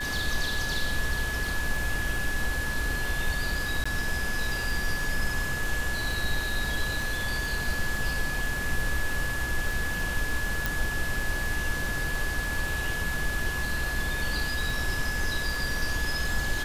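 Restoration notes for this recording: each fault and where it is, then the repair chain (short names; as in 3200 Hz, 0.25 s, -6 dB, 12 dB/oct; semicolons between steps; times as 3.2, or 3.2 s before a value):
crackle 35/s -33 dBFS
tone 1700 Hz -31 dBFS
3.84–3.85 gap 15 ms
10.66 pop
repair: de-click; notch 1700 Hz, Q 30; interpolate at 3.84, 15 ms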